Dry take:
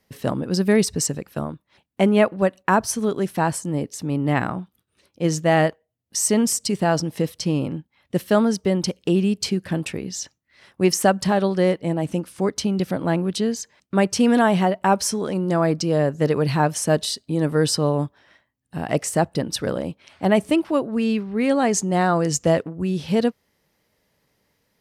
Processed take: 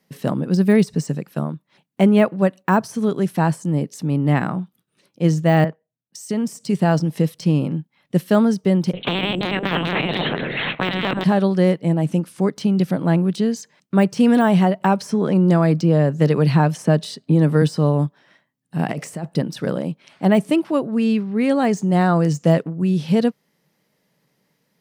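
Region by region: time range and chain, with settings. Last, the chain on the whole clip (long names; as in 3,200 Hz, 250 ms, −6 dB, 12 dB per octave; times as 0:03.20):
0:05.64–0:06.55: downward compressor, threshold −20 dBFS + multiband upward and downward expander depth 70%
0:08.93–0:11.24: echo through a band-pass that steps 118 ms, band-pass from 170 Hz, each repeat 0.7 octaves, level −3 dB + linear-prediction vocoder at 8 kHz pitch kept + every bin compressed towards the loudest bin 10 to 1
0:14.80–0:17.62: high-shelf EQ 5,000 Hz −8.5 dB + multiband upward and downward compressor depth 70%
0:18.79–0:19.26: parametric band 2,300 Hz +3 dB 0.42 octaves + compressor whose output falls as the input rises −26 dBFS
whole clip: de-essing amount 65%; low shelf with overshoot 110 Hz −11 dB, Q 3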